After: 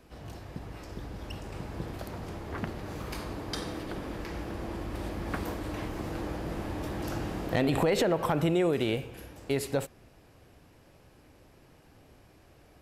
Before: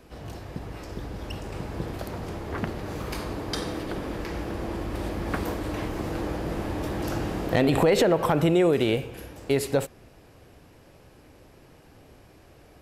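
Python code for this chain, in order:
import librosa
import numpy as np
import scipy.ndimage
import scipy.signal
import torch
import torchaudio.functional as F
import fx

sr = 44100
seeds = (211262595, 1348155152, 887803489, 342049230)

y = fx.peak_eq(x, sr, hz=450.0, db=-2.0, octaves=0.77)
y = y * 10.0 ** (-4.5 / 20.0)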